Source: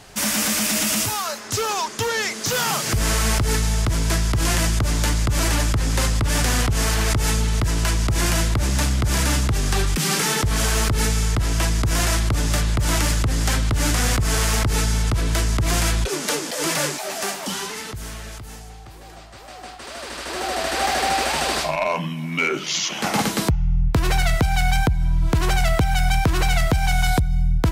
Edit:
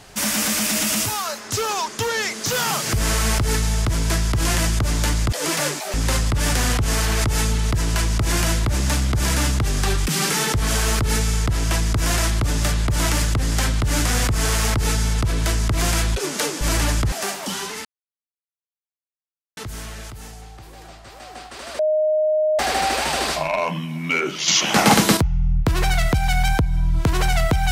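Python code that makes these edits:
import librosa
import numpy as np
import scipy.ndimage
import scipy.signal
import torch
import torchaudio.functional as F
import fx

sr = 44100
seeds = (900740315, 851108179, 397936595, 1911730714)

y = fx.edit(x, sr, fx.swap(start_s=5.32, length_s=0.51, other_s=16.5, other_length_s=0.62),
    fx.insert_silence(at_s=17.85, length_s=1.72),
    fx.bleep(start_s=20.07, length_s=0.8, hz=618.0, db=-15.5),
    fx.clip_gain(start_s=22.76, length_s=0.69, db=7.0), tone=tone)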